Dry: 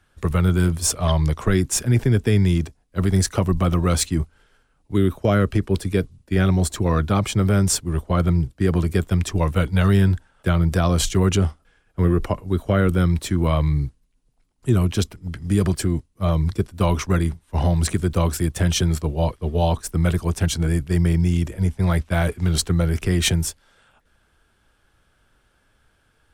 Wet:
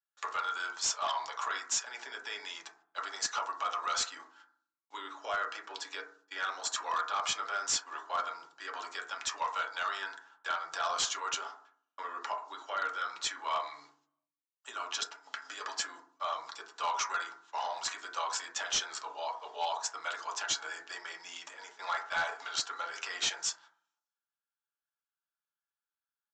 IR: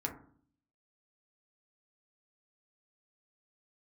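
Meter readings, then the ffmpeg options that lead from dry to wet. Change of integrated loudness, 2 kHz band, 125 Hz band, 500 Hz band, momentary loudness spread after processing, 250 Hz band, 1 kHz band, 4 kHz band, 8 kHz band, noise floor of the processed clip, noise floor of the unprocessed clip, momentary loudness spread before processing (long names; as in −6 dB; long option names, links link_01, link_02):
−14.5 dB, −5.0 dB, below −40 dB, −20.5 dB, 12 LU, −40.0 dB, −4.0 dB, −5.5 dB, −8.5 dB, below −85 dBFS, −64 dBFS, 6 LU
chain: -filter_complex "[0:a]alimiter=limit=-17.5dB:level=0:latency=1:release=255,agate=range=-37dB:threshold=-49dB:ratio=16:detection=peak,highpass=frequency=920:width=0.5412,highpass=frequency=920:width=1.3066,equalizer=frequency=2100:width=2.7:gain=-7.5[link_01];[1:a]atrim=start_sample=2205[link_02];[link_01][link_02]afir=irnorm=-1:irlink=0,aresample=16000,volume=30.5dB,asoftclip=hard,volume=-30.5dB,aresample=44100,volume=4.5dB"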